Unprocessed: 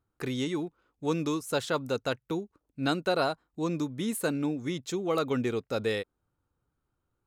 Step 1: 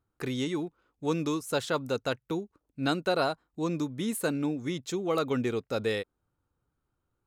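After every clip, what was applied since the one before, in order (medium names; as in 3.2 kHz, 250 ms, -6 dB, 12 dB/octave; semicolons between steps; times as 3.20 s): no audible change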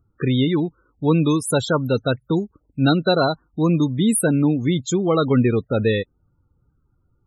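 loudest bins only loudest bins 32; tone controls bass +9 dB, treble +11 dB; trim +8.5 dB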